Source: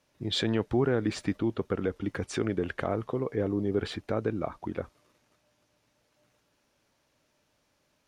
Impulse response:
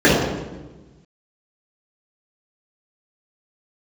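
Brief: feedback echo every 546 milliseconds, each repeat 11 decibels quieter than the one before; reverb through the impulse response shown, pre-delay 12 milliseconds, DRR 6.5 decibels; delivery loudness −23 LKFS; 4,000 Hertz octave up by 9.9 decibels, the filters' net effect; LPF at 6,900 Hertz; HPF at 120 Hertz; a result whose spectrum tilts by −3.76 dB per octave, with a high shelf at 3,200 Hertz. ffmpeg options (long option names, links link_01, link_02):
-filter_complex "[0:a]highpass=120,lowpass=6900,highshelf=frequency=3200:gain=8,equalizer=frequency=4000:width_type=o:gain=6.5,aecho=1:1:546|1092|1638:0.282|0.0789|0.0221,asplit=2[link_01][link_02];[1:a]atrim=start_sample=2205,adelay=12[link_03];[link_02][link_03]afir=irnorm=-1:irlink=0,volume=-35dB[link_04];[link_01][link_04]amix=inputs=2:normalize=0,volume=3.5dB"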